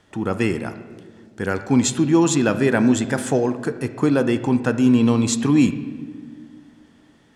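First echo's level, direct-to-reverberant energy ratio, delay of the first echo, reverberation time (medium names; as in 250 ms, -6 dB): no echo, 10.5 dB, no echo, 1.8 s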